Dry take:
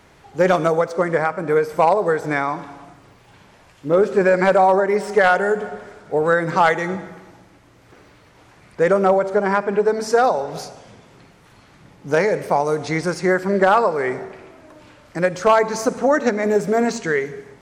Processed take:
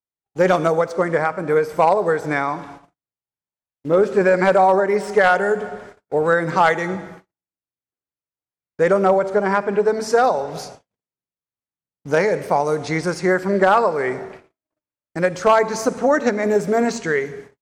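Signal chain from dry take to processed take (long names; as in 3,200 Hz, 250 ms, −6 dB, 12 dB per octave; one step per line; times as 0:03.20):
noise gate −38 dBFS, range −52 dB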